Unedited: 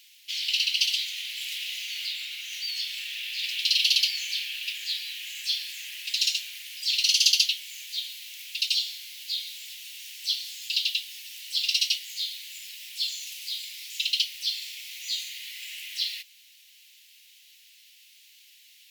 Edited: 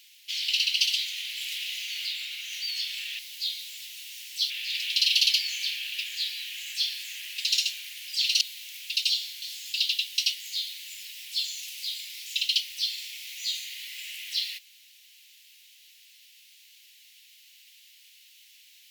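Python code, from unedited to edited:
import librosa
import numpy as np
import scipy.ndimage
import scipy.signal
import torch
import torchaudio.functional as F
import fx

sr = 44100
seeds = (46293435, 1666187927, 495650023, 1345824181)

y = fx.edit(x, sr, fx.cut(start_s=7.1, length_s=0.96),
    fx.move(start_s=9.07, length_s=1.31, to_s=3.19),
    fx.cut(start_s=11.14, length_s=0.68), tone=tone)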